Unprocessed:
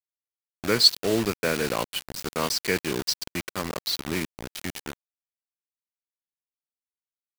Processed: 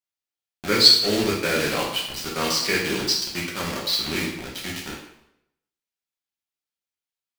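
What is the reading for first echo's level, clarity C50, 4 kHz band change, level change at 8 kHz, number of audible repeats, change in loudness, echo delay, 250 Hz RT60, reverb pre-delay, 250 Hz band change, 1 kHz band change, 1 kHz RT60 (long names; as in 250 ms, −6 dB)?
no echo audible, 4.0 dB, +5.5 dB, +3.5 dB, no echo audible, +5.0 dB, no echo audible, 0.70 s, 5 ms, +2.5 dB, +3.0 dB, 0.80 s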